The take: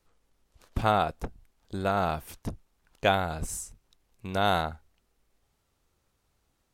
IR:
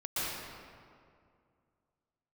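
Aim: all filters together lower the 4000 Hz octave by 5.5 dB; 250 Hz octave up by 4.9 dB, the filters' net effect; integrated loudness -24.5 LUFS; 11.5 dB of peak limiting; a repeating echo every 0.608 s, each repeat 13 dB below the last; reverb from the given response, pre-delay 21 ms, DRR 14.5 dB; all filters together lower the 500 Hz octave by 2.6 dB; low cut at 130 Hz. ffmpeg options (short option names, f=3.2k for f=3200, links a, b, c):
-filter_complex "[0:a]highpass=130,equalizer=f=250:t=o:g=9,equalizer=f=500:t=o:g=-5.5,equalizer=f=4k:t=o:g=-6.5,alimiter=limit=-20dB:level=0:latency=1,aecho=1:1:608|1216|1824:0.224|0.0493|0.0108,asplit=2[a][b];[1:a]atrim=start_sample=2205,adelay=21[c];[b][c]afir=irnorm=-1:irlink=0,volume=-21.5dB[d];[a][d]amix=inputs=2:normalize=0,volume=12dB"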